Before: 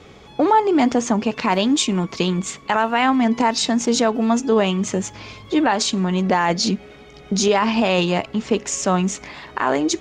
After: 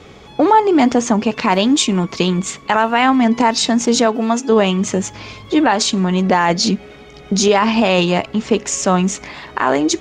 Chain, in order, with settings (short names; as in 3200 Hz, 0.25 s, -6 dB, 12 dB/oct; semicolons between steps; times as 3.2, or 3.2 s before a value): 4.05–4.48 HPF 160 Hz -> 430 Hz 6 dB/oct; gain +4 dB